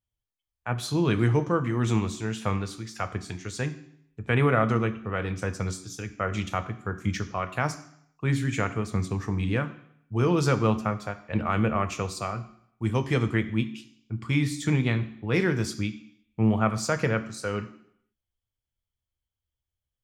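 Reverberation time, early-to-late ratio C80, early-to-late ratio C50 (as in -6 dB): 0.70 s, 17.0 dB, 14.5 dB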